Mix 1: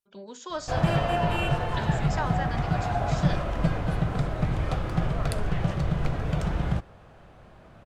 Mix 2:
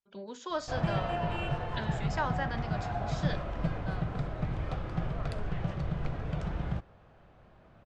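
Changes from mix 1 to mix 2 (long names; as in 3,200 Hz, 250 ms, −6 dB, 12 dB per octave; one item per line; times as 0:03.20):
background −7.0 dB
master: add high-frequency loss of the air 86 metres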